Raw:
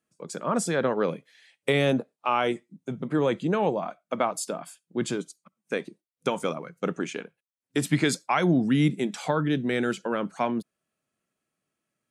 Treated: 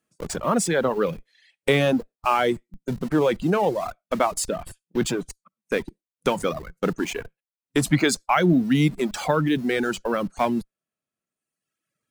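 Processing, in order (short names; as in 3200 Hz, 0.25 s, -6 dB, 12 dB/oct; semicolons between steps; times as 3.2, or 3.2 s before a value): in parallel at -11 dB: Schmitt trigger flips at -38.5 dBFS; on the sum: reverb removal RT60 1.3 s; gain +3.5 dB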